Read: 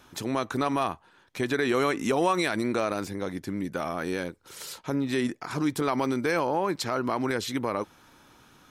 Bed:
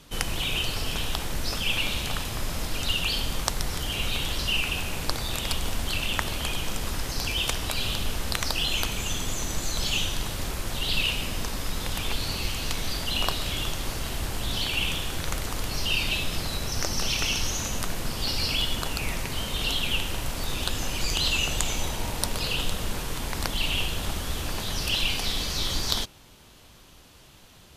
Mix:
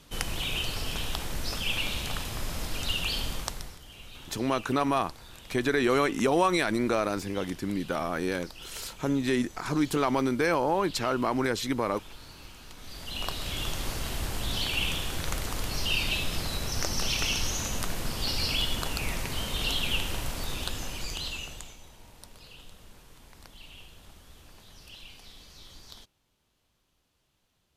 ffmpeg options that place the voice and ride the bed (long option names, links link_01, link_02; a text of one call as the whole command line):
ffmpeg -i stem1.wav -i stem2.wav -filter_complex "[0:a]adelay=4150,volume=0.5dB[link_01];[1:a]volume=13.5dB,afade=type=out:start_time=3.26:duration=0.52:silence=0.16788,afade=type=in:start_time=12.77:duration=1.01:silence=0.141254,afade=type=out:start_time=20.15:duration=1.62:silence=0.1[link_02];[link_01][link_02]amix=inputs=2:normalize=0" out.wav